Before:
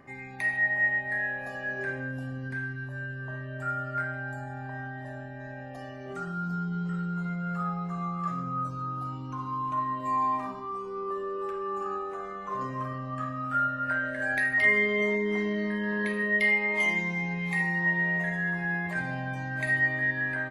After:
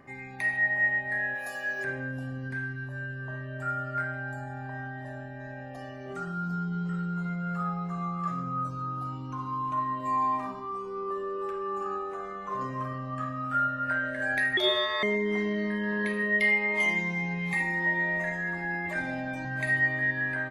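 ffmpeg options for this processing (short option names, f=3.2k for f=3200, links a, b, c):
-filter_complex "[0:a]asplit=3[a][b][c];[a]afade=t=out:st=1.34:d=0.02[d];[b]aemphasis=mode=production:type=riaa,afade=t=in:st=1.34:d=0.02,afade=t=out:st=1.83:d=0.02[e];[c]afade=t=in:st=1.83:d=0.02[f];[d][e][f]amix=inputs=3:normalize=0,asettb=1/sr,asplit=3[g][h][i];[g]atrim=end=14.574[j];[h]atrim=start=14.57:end=15.03,asetpts=PTS-STARTPTS,afade=t=in:d=0.004:c=qsin,afade=t=out:st=0.456:d=0.004:c=qsin,aeval=exprs='val(0)*sin(2*PI*1500*n/s)':c=same[k];[i]atrim=start=15.026[l];[j][k]acrossfade=d=0.004:c1=hsin:c2=qsin[m];[m][l]acrossfade=d=0.004:c1=qsin:c2=hsin,asettb=1/sr,asplit=3[n][o][p];[n]atrim=end=17.534[q];[o]atrim=start=17.53:end=19.45,asetpts=PTS-STARTPTS,afade=t=in:d=0.004:c=qsin,afade=t=out:st=1.916:d=0.004:c=qsin,aecho=1:1:3.4:0.74,atrim=end_sample=84672[r];[p]atrim=start=19.446[s];[q][r]acrossfade=d=0.004:c1=hsin:c2=qsin[t];[t][s]acrossfade=d=0.004:c1=qsin:c2=hsin"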